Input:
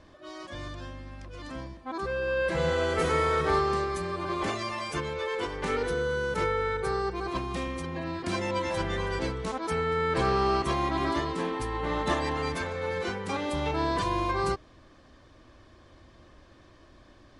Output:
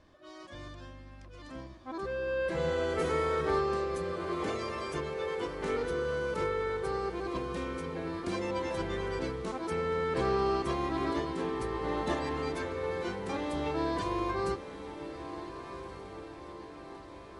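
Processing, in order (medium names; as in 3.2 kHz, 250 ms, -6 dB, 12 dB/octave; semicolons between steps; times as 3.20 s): dynamic bell 360 Hz, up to +5 dB, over -42 dBFS, Q 0.83; on a send: echo that smears into a reverb 1429 ms, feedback 61%, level -11 dB; on the sum: trim -7 dB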